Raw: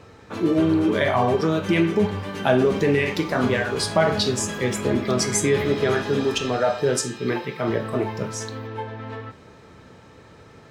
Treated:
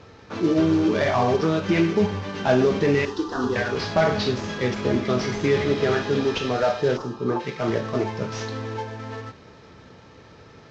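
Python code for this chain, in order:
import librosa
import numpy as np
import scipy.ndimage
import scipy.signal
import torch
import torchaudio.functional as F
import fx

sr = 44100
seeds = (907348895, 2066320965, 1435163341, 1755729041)

y = fx.cvsd(x, sr, bps=32000)
y = fx.fixed_phaser(y, sr, hz=600.0, stages=6, at=(3.05, 3.56))
y = fx.high_shelf_res(y, sr, hz=1500.0, db=-9.0, q=3.0, at=(6.96, 7.39), fade=0.02)
y = fx.env_flatten(y, sr, amount_pct=50, at=(8.32, 8.81))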